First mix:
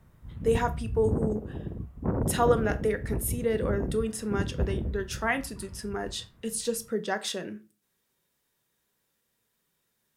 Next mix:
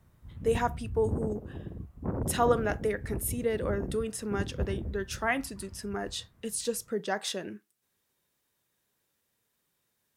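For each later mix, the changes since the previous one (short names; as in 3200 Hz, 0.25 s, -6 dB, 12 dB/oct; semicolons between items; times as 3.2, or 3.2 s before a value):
background -4.0 dB; reverb: off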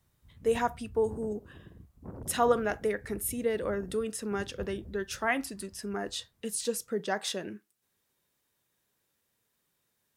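background -11.0 dB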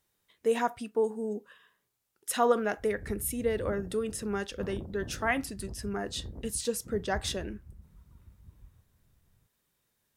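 background: entry +2.55 s; master: add low shelf 66 Hz +11 dB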